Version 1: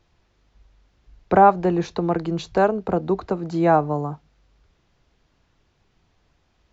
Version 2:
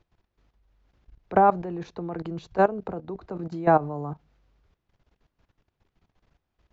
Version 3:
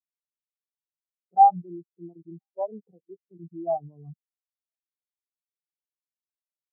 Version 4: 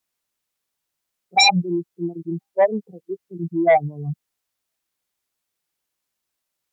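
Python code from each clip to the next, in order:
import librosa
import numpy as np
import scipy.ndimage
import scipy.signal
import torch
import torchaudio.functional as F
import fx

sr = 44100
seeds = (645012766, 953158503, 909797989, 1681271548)

y1 = fx.high_shelf(x, sr, hz=3700.0, db=-8.5)
y1 = fx.level_steps(y1, sr, step_db=16)
y2 = fx.leveller(y1, sr, passes=5)
y2 = y2 + 10.0 ** (-22.0 / 20.0) * np.pad(y2, (int(1004 * sr / 1000.0), 0))[:len(y2)]
y2 = fx.spectral_expand(y2, sr, expansion=4.0)
y2 = y2 * librosa.db_to_amplitude(-1.5)
y3 = fx.fold_sine(y2, sr, drive_db=15, ceiling_db=-6.5)
y3 = y3 * librosa.db_to_amplitude(-3.0)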